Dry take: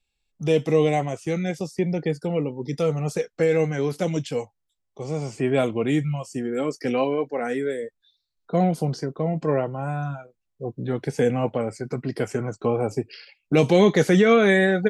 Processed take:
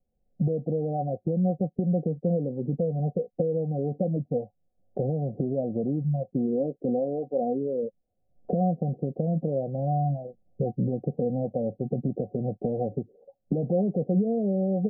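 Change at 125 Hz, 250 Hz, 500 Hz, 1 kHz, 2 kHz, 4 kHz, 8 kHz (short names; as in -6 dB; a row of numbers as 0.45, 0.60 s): -1.5 dB, -3.0 dB, -6.0 dB, -5.5 dB, under -40 dB, under -40 dB, under -40 dB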